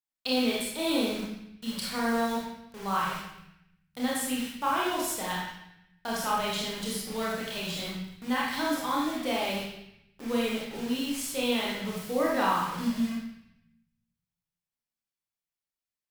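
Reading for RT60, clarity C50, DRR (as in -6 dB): 0.75 s, -0.5 dB, -5.5 dB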